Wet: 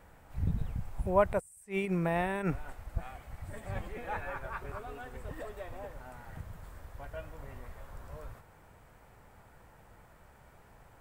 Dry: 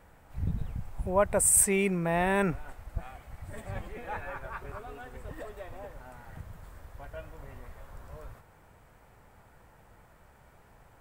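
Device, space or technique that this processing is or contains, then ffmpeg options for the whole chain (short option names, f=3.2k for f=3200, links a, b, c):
de-esser from a sidechain: -filter_complex "[0:a]asplit=2[a][b];[b]highpass=f=6.1k:w=0.5412,highpass=f=6.1k:w=1.3066,apad=whole_len=485332[c];[a][c]sidechaincompress=threshold=-57dB:ratio=8:attack=4.8:release=58"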